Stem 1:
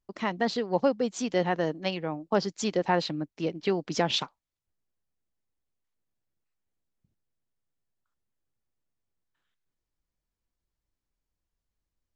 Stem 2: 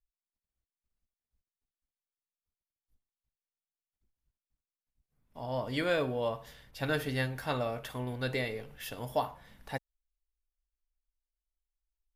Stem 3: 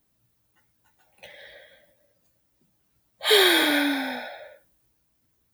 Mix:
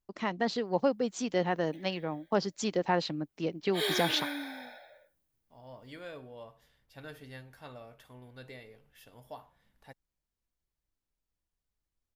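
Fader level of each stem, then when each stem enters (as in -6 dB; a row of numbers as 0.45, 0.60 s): -3.0, -15.0, -14.0 dB; 0.00, 0.15, 0.50 s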